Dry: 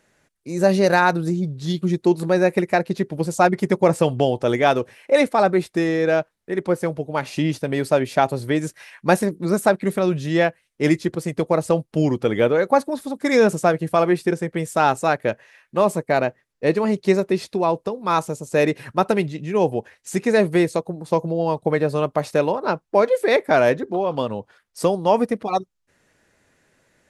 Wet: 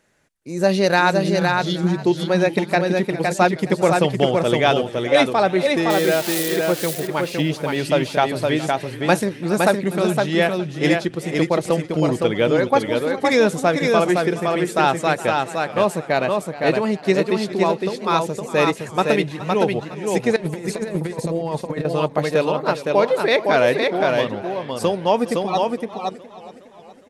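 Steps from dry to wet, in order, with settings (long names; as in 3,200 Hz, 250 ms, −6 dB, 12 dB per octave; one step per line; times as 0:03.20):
0:05.90–0:06.56: spike at every zero crossing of −16 dBFS
single-tap delay 513 ms −3.5 dB
0:20.36–0:21.85: compressor whose output falls as the input rises −23 dBFS, ratio −0.5
dynamic equaliser 3,400 Hz, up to +7 dB, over −40 dBFS, Q 1.1
feedback echo with a swinging delay time 415 ms, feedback 56%, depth 104 cents, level −17 dB
level −1 dB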